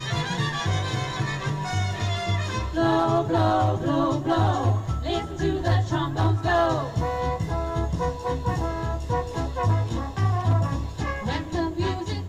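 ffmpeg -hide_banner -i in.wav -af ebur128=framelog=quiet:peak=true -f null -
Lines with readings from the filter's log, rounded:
Integrated loudness:
  I:         -25.2 LUFS
  Threshold: -35.2 LUFS
Loudness range:
  LRA:         3.1 LU
  Threshold: -44.8 LUFS
  LRA low:   -26.6 LUFS
  LRA high:  -23.4 LUFS
True peak:
  Peak:      -13.2 dBFS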